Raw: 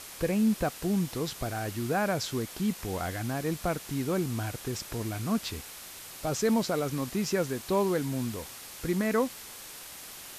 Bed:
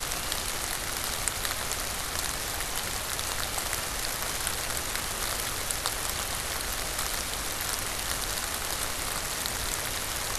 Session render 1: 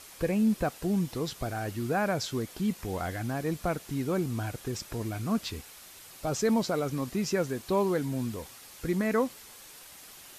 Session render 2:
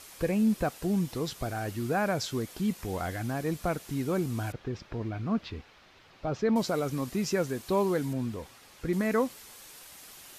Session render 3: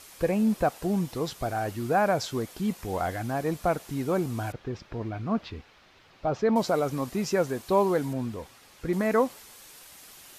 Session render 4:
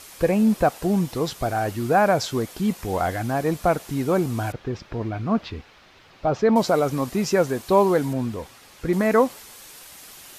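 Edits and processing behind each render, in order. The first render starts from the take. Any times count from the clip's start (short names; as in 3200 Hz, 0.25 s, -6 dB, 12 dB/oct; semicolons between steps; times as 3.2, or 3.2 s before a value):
denoiser 6 dB, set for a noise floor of -45 dBFS
4.52–6.56 air absorption 250 m; 8.13–8.93 high shelf 5400 Hz -11.5 dB
dynamic EQ 760 Hz, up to +7 dB, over -42 dBFS, Q 0.89
gain +5.5 dB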